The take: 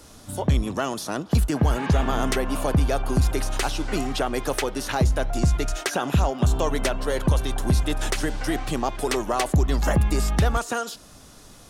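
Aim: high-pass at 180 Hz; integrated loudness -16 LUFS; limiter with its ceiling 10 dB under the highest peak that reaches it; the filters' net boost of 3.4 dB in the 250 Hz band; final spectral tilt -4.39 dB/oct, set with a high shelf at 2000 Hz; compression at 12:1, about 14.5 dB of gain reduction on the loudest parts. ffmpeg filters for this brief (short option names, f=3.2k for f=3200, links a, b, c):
-af "highpass=180,equalizer=f=250:t=o:g=6,highshelf=f=2k:g=-3,acompressor=threshold=-31dB:ratio=12,volume=22dB,alimiter=limit=-5dB:level=0:latency=1"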